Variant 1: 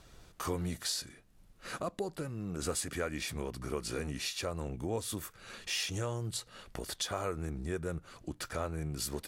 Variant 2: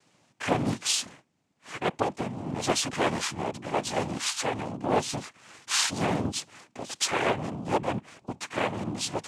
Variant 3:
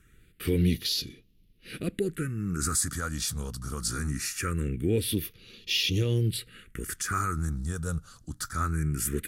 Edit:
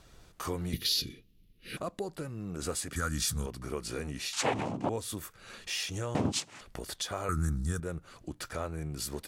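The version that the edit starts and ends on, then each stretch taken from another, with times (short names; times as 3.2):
1
0.73–1.77 from 3
2.96–3.46 from 3
4.33–4.89 from 2
6.15–6.61 from 2
7.29–7.8 from 3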